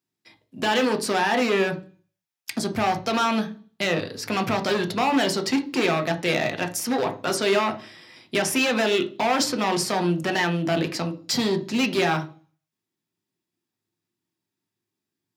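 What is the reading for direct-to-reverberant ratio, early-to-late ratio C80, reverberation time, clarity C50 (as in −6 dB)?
6.0 dB, 20.5 dB, 0.40 s, 15.0 dB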